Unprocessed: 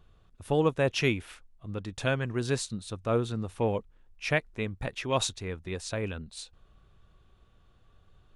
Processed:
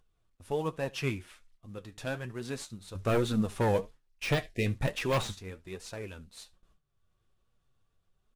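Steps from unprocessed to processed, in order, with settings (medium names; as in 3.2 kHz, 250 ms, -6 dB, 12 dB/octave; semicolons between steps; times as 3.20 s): CVSD coder 64 kbps; gate with hold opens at -47 dBFS; 2.95–5.34 s: sine folder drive 8 dB, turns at -13.5 dBFS; delay 73 ms -23.5 dB; de-esser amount 60%; 4.43–4.66 s: spectral selection erased 740–1700 Hz; flange 0.34 Hz, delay 1.9 ms, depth 7.5 ms, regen +67%; upward compressor, threshold -57 dBFS; flange 1.2 Hz, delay 3.6 ms, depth 8.1 ms, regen +58%; trim +1.5 dB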